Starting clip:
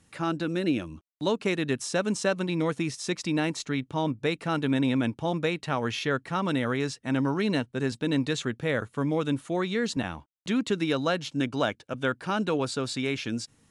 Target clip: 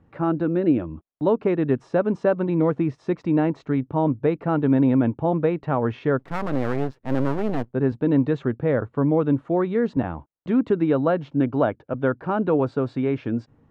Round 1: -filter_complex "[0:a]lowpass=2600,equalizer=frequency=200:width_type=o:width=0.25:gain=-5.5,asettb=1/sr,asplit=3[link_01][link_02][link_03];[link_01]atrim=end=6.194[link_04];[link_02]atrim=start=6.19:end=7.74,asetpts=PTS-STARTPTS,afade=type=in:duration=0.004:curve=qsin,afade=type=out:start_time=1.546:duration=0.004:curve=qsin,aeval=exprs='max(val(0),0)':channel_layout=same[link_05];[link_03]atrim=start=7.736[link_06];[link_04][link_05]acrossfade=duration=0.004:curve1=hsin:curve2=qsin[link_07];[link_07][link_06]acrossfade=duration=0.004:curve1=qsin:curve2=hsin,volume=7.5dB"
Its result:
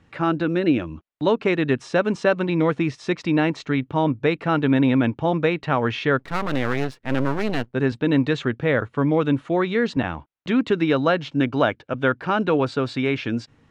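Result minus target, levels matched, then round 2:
2,000 Hz band +8.5 dB
-filter_complex "[0:a]lowpass=960,equalizer=frequency=200:width_type=o:width=0.25:gain=-5.5,asettb=1/sr,asplit=3[link_01][link_02][link_03];[link_01]atrim=end=6.194[link_04];[link_02]atrim=start=6.19:end=7.74,asetpts=PTS-STARTPTS,afade=type=in:duration=0.004:curve=qsin,afade=type=out:start_time=1.546:duration=0.004:curve=qsin,aeval=exprs='max(val(0),0)':channel_layout=same[link_05];[link_03]atrim=start=7.736[link_06];[link_04][link_05]acrossfade=duration=0.004:curve1=hsin:curve2=qsin[link_07];[link_07][link_06]acrossfade=duration=0.004:curve1=qsin:curve2=hsin,volume=7.5dB"

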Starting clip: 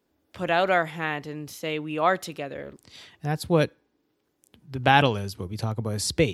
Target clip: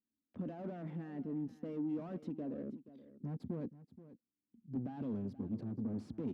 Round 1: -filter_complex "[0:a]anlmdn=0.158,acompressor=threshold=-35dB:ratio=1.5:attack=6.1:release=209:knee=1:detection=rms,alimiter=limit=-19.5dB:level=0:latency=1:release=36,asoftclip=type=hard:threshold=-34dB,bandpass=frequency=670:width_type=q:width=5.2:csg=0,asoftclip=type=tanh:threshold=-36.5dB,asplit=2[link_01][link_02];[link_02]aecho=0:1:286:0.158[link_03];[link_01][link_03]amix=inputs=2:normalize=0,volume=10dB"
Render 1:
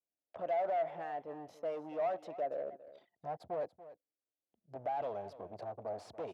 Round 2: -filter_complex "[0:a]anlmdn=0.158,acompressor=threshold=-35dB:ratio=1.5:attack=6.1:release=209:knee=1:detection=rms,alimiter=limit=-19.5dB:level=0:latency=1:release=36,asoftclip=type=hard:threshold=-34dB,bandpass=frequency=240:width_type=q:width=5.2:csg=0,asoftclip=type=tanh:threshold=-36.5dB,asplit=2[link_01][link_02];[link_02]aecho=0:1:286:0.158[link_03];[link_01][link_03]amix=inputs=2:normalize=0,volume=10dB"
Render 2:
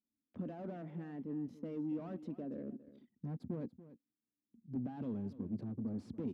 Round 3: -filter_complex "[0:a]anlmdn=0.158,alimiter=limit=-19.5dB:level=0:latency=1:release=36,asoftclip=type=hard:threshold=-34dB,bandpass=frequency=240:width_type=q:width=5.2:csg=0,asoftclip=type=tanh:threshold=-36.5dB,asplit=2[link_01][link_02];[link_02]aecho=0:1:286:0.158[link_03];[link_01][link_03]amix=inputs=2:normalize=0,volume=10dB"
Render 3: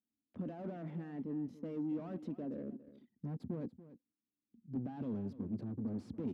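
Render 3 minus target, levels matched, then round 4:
echo 192 ms early
-filter_complex "[0:a]anlmdn=0.158,alimiter=limit=-19.5dB:level=0:latency=1:release=36,asoftclip=type=hard:threshold=-34dB,bandpass=frequency=240:width_type=q:width=5.2:csg=0,asoftclip=type=tanh:threshold=-36.5dB,asplit=2[link_01][link_02];[link_02]aecho=0:1:478:0.158[link_03];[link_01][link_03]amix=inputs=2:normalize=0,volume=10dB"

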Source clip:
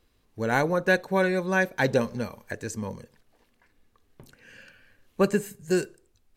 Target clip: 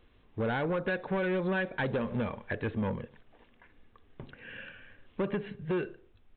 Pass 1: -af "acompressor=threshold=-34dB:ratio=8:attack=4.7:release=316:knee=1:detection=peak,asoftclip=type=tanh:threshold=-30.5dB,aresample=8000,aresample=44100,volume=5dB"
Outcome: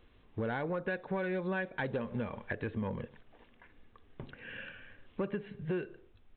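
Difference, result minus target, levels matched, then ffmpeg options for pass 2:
downward compressor: peak gain reduction +7 dB
-af "acompressor=threshold=-26dB:ratio=8:attack=4.7:release=316:knee=1:detection=peak,asoftclip=type=tanh:threshold=-30.5dB,aresample=8000,aresample=44100,volume=5dB"

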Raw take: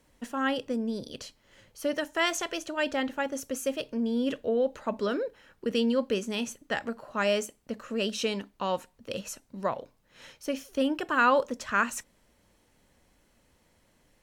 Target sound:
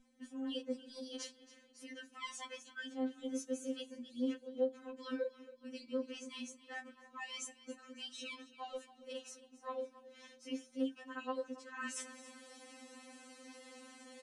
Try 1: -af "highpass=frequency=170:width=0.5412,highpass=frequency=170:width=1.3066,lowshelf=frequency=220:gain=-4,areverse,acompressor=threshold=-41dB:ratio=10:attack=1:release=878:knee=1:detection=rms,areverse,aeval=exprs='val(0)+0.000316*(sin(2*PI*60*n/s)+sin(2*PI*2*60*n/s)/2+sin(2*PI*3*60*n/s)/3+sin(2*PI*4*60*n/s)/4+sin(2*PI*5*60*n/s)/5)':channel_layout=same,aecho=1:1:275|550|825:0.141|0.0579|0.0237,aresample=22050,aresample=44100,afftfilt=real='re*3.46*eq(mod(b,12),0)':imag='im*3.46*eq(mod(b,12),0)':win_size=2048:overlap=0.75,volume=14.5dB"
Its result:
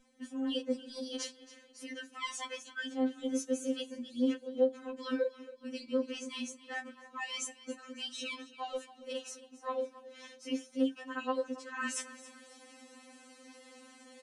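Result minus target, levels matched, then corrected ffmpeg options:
downward compressor: peak gain reduction −6.5 dB
-af "highpass=frequency=170:width=0.5412,highpass=frequency=170:width=1.3066,lowshelf=frequency=220:gain=-4,areverse,acompressor=threshold=-48dB:ratio=10:attack=1:release=878:knee=1:detection=rms,areverse,aeval=exprs='val(0)+0.000316*(sin(2*PI*60*n/s)+sin(2*PI*2*60*n/s)/2+sin(2*PI*3*60*n/s)/3+sin(2*PI*4*60*n/s)/4+sin(2*PI*5*60*n/s)/5)':channel_layout=same,aecho=1:1:275|550|825:0.141|0.0579|0.0237,aresample=22050,aresample=44100,afftfilt=real='re*3.46*eq(mod(b,12),0)':imag='im*3.46*eq(mod(b,12),0)':win_size=2048:overlap=0.75,volume=14.5dB"

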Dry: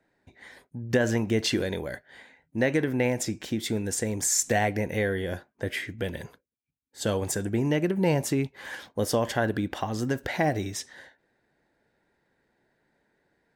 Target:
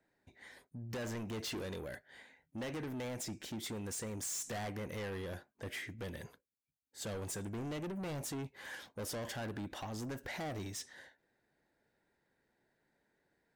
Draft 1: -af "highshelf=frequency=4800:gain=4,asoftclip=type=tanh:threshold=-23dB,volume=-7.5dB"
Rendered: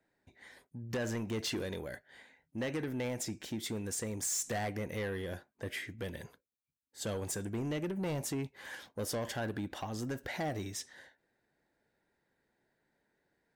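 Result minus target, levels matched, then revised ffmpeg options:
soft clipping: distortion −5 dB
-af "highshelf=frequency=4800:gain=4,asoftclip=type=tanh:threshold=-30.5dB,volume=-7.5dB"

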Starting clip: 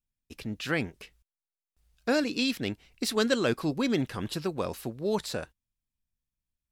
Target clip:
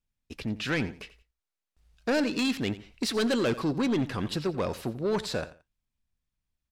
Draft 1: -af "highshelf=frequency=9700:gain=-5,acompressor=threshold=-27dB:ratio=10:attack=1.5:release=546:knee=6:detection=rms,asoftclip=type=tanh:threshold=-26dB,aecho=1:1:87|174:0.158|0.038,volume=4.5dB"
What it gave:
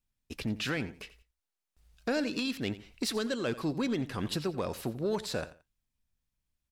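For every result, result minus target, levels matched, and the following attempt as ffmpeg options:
downward compressor: peak gain reduction +12.5 dB; 8,000 Hz band +2.5 dB
-af "highshelf=frequency=9700:gain=-5,asoftclip=type=tanh:threshold=-26dB,aecho=1:1:87|174:0.158|0.038,volume=4.5dB"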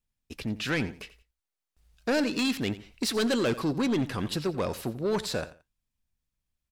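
8,000 Hz band +2.5 dB
-af "highshelf=frequency=9700:gain=-15,asoftclip=type=tanh:threshold=-26dB,aecho=1:1:87|174:0.158|0.038,volume=4.5dB"

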